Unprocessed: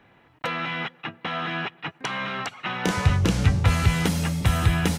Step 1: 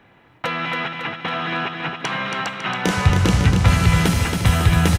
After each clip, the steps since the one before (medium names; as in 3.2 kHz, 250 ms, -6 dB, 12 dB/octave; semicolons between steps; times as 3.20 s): feedback delay 276 ms, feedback 57%, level -5.5 dB; trim +4 dB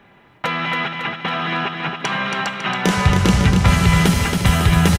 comb 5 ms, depth 33%; trim +2 dB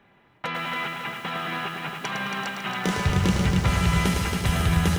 bit-crushed delay 107 ms, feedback 35%, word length 6-bit, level -5 dB; trim -8.5 dB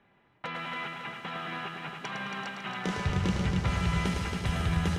distance through air 50 m; trim -6.5 dB